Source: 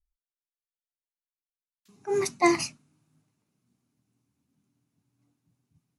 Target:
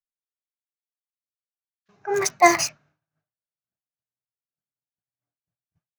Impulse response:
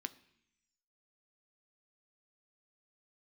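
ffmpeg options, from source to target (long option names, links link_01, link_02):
-filter_complex "[0:a]agate=range=-33dB:threshold=-57dB:ratio=3:detection=peak,equalizer=frequency=250:width_type=o:width=0.67:gain=-12,equalizer=frequency=630:width_type=o:width=0.67:gain=12,equalizer=frequency=1600:width_type=o:width=0.67:gain=12,equalizer=frequency=6300:width_type=o:width=0.67:gain=9,acrossover=split=4300[link_01][link_02];[link_02]acrusher=bits=5:mix=0:aa=0.000001[link_03];[link_01][link_03]amix=inputs=2:normalize=0,volume=1.5dB"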